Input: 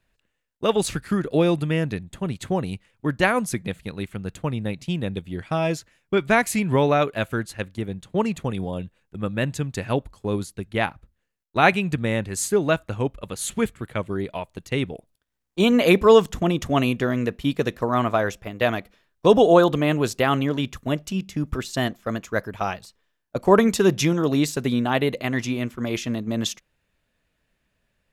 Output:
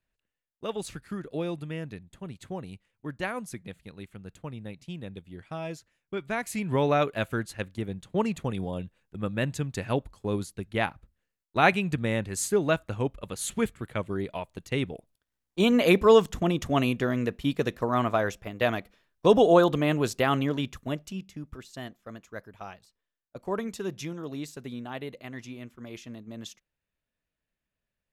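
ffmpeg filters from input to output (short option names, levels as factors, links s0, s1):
-af "volume=0.631,afade=t=in:st=6.37:d=0.59:silence=0.375837,afade=t=out:st=20.49:d=1:silence=0.266073"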